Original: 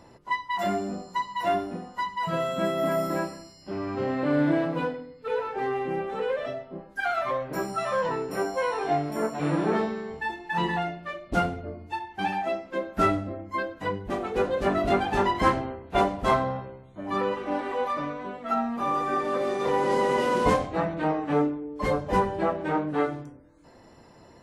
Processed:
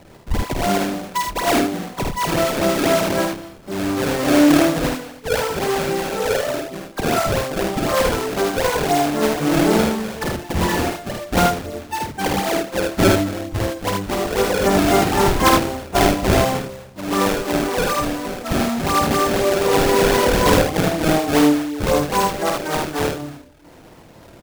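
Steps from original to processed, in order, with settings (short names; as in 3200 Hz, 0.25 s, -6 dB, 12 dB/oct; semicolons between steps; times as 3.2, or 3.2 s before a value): 22.05–23.15 low shelf 350 Hz -10 dB; decimation with a swept rate 26×, swing 160% 4 Hz; early reflections 51 ms -4.5 dB, 78 ms -4.5 dB; gain +6 dB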